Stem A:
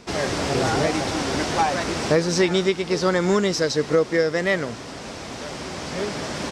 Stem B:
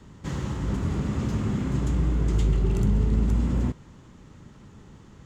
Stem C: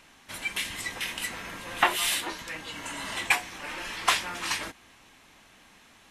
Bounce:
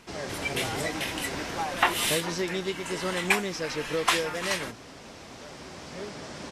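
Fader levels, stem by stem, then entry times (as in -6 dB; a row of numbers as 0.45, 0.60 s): -11.0 dB, off, -0.5 dB; 0.00 s, off, 0.00 s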